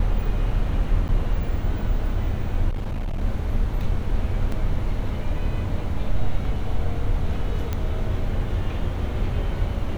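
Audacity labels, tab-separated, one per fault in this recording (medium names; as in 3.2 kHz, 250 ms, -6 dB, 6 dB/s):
1.080000	1.090000	dropout 9.3 ms
2.690000	3.210000	clipped -23 dBFS
4.520000	4.520000	dropout 3.4 ms
7.730000	7.730000	pop -13 dBFS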